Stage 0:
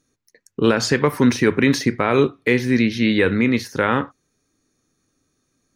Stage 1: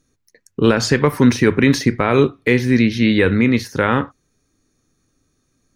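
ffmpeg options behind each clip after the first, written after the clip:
ffmpeg -i in.wav -af "lowshelf=frequency=98:gain=10,volume=1.5dB" out.wav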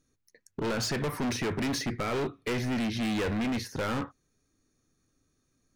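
ffmpeg -i in.wav -af "asoftclip=type=hard:threshold=-19.5dB,volume=-8dB" out.wav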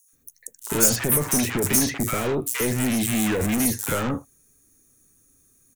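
ffmpeg -i in.wav -filter_complex "[0:a]acrossover=split=160|1100|2900[link_01][link_02][link_03][link_04];[link_04]aexciter=amount=7.4:drive=6.8:freq=6700[link_05];[link_01][link_02][link_03][link_05]amix=inputs=4:normalize=0,acrossover=split=890|5100[link_06][link_07][link_08];[link_07]adelay=80[link_09];[link_06]adelay=130[link_10];[link_10][link_09][link_08]amix=inputs=3:normalize=0,volume=6.5dB" out.wav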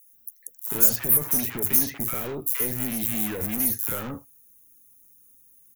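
ffmpeg -i in.wav -af "aexciter=amount=3.3:drive=9.6:freq=11000,volume=-8.5dB" out.wav

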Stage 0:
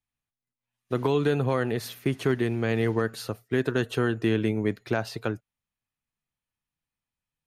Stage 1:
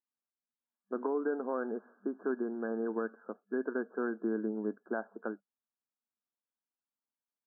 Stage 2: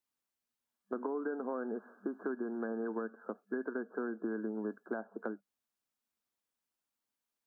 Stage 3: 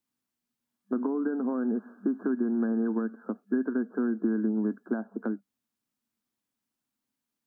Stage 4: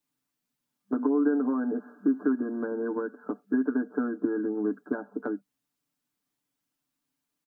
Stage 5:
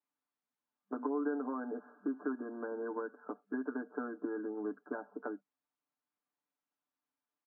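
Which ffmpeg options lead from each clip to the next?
ffmpeg -i in.wav -af "afftfilt=real='re*between(b*sr/4096,200,1700)':imag='im*between(b*sr/4096,200,1700)':win_size=4096:overlap=0.75,volume=-8dB" out.wav
ffmpeg -i in.wav -filter_complex "[0:a]acrossover=split=190|840[link_01][link_02][link_03];[link_01]acompressor=threshold=-52dB:ratio=4[link_04];[link_02]acompressor=threshold=-43dB:ratio=4[link_05];[link_03]acompressor=threshold=-51dB:ratio=4[link_06];[link_04][link_05][link_06]amix=inputs=3:normalize=0,volume=5dB" out.wav
ffmpeg -i in.wav -af "equalizer=frequency=125:width_type=o:width=1:gain=8,equalizer=frequency=250:width_type=o:width=1:gain=11,equalizer=frequency=500:width_type=o:width=1:gain=-3,volume=2dB" out.wav
ffmpeg -i in.wav -af "aecho=1:1:6.8:0.92" out.wav
ffmpeg -i in.wav -af "bandpass=frequency=900:width_type=q:width=0.91:csg=0,volume=-3dB" out.wav

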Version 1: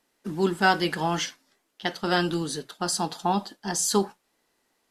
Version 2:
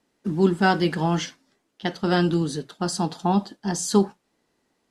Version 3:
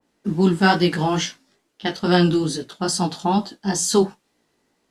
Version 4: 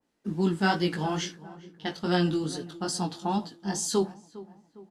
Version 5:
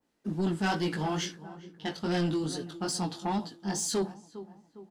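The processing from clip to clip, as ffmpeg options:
ffmpeg -i in.wav -af "lowpass=9600,equalizer=frequency=130:width=0.32:gain=10,volume=-2dB" out.wav
ffmpeg -i in.wav -af "flanger=delay=16.5:depth=4.1:speed=2.3,adynamicequalizer=threshold=0.00794:dfrequency=2000:dqfactor=0.7:tfrequency=2000:tqfactor=0.7:attack=5:release=100:ratio=0.375:range=2:mode=boostabove:tftype=highshelf,volume=5.5dB" out.wav
ffmpeg -i in.wav -filter_complex "[0:a]asplit=2[link_01][link_02];[link_02]adelay=406,lowpass=frequency=1500:poles=1,volume=-17dB,asplit=2[link_03][link_04];[link_04]adelay=406,lowpass=frequency=1500:poles=1,volume=0.51,asplit=2[link_05][link_06];[link_06]adelay=406,lowpass=frequency=1500:poles=1,volume=0.51,asplit=2[link_07][link_08];[link_08]adelay=406,lowpass=frequency=1500:poles=1,volume=0.51[link_09];[link_01][link_03][link_05][link_07][link_09]amix=inputs=5:normalize=0,volume=-8.5dB" out.wav
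ffmpeg -i in.wav -af "asoftclip=type=tanh:threshold=-23dB" out.wav

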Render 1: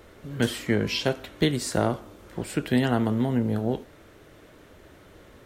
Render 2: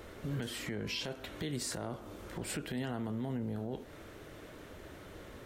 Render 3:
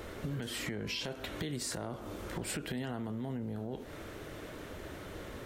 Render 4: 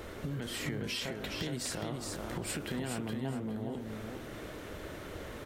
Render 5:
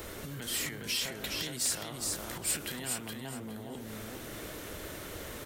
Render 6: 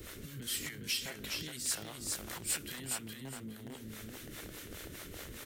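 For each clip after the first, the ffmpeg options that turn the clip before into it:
ffmpeg -i in.wav -af "acompressor=threshold=-31dB:ratio=6,alimiter=level_in=5.5dB:limit=-24dB:level=0:latency=1:release=26,volume=-5.5dB,volume=1dB" out.wav
ffmpeg -i in.wav -af "acompressor=threshold=-39dB:ratio=6,volume=5dB" out.wav
ffmpeg -i in.wav -af "aecho=1:1:415|830|1245:0.596|0.137|0.0315" out.wav
ffmpeg -i in.wav -filter_complex "[0:a]acrossover=split=770|2200[link_01][link_02][link_03];[link_01]alimiter=level_in=11.5dB:limit=-24dB:level=0:latency=1:release=85,volume=-11.5dB[link_04];[link_04][link_02][link_03]amix=inputs=3:normalize=0,crystalizer=i=2.5:c=0,asoftclip=type=tanh:threshold=-21.5dB" out.wav
ffmpeg -i in.wav -filter_complex "[0:a]acrossover=split=520[link_01][link_02];[link_01]aeval=exprs='val(0)*(1-0.7/2+0.7/2*cos(2*PI*4.9*n/s))':channel_layout=same[link_03];[link_02]aeval=exprs='val(0)*(1-0.7/2-0.7/2*cos(2*PI*4.9*n/s))':channel_layout=same[link_04];[link_03][link_04]amix=inputs=2:normalize=0,acrossover=split=480|1300[link_05][link_06][link_07];[link_06]acrusher=bits=7:mix=0:aa=0.000001[link_08];[link_05][link_08][link_07]amix=inputs=3:normalize=0" out.wav

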